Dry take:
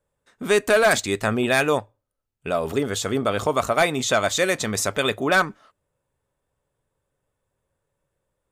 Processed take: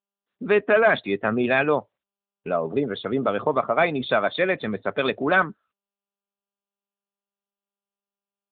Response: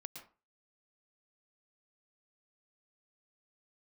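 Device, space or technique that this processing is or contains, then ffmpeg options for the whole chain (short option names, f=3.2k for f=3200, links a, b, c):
mobile call with aggressive noise cancelling: -af "highpass=f=130:w=0.5412,highpass=f=130:w=1.3066,afftdn=nr=34:nf=-31" -ar 8000 -c:a libopencore_amrnb -b:a 10200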